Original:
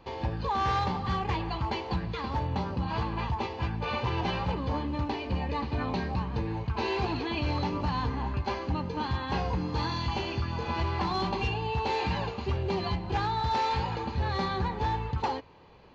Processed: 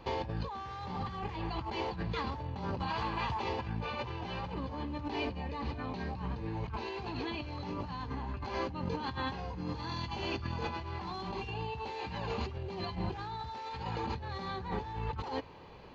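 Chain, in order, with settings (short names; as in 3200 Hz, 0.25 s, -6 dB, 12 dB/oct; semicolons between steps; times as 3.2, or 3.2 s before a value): 2.79–3.43 low shelf 460 Hz -10 dB; negative-ratio compressor -36 dBFS, ratio -1; gain -2 dB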